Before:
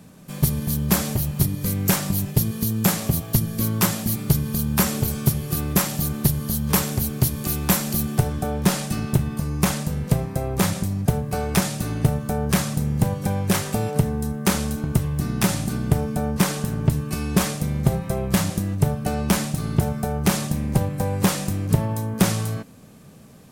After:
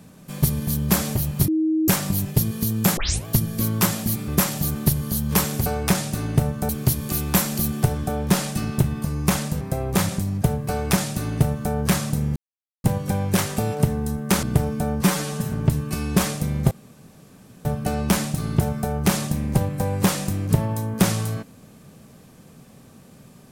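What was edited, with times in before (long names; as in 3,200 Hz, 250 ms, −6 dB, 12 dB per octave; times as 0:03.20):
0:01.48–0:01.88: beep over 316 Hz −17.5 dBFS
0:02.97: tape start 0.29 s
0:04.28–0:05.66: remove
0:09.96–0:10.25: remove
0:11.33–0:12.36: duplicate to 0:07.04
0:13.00: splice in silence 0.48 s
0:14.59–0:15.79: remove
0:16.40–0:16.72: time-stretch 1.5×
0:17.91–0:18.85: fill with room tone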